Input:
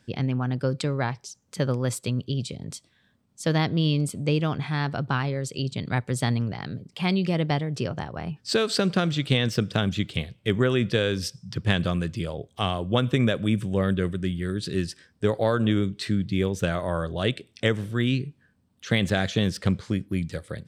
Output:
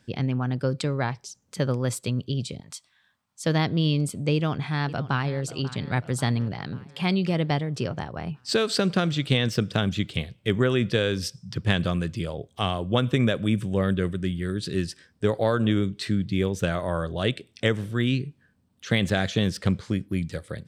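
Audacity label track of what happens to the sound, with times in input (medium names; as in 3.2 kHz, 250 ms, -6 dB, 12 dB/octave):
2.600000	3.440000	resonant low shelf 630 Hz -13.5 dB, Q 1.5
4.340000	5.400000	echo throw 540 ms, feedback 60%, level -16 dB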